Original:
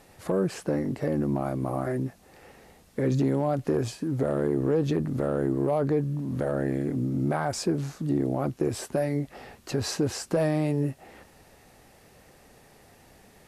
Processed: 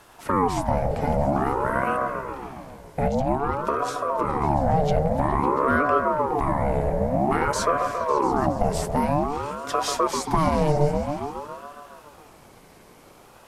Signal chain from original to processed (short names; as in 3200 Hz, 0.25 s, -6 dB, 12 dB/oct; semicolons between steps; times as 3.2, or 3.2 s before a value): 3.07–4.41 compressor, threshold -25 dBFS, peak gain reduction 5.5 dB; repeats that get brighter 0.138 s, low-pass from 750 Hz, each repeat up 1 oct, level -6 dB; ring modulator with a swept carrier 580 Hz, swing 50%, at 0.51 Hz; gain +6 dB